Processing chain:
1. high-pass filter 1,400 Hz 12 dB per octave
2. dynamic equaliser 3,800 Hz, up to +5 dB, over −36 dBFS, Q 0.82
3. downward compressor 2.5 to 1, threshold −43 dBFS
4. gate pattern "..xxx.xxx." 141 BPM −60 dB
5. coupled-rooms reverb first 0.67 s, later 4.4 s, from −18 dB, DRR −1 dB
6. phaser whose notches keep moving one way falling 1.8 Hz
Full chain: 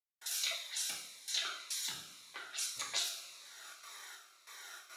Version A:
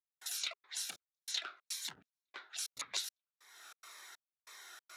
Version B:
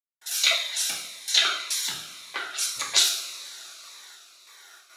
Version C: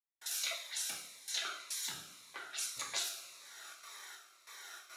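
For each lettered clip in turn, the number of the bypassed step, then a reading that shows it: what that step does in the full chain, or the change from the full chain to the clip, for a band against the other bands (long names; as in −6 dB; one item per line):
5, change in momentary loudness spread +2 LU
3, average gain reduction 8.0 dB
2, 4 kHz band −3.0 dB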